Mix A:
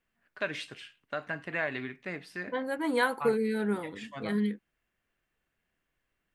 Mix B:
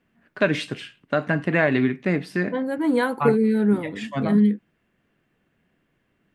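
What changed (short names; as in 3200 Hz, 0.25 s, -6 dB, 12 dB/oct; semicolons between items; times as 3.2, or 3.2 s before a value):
first voice +8.5 dB; master: add bell 200 Hz +12 dB 2.7 oct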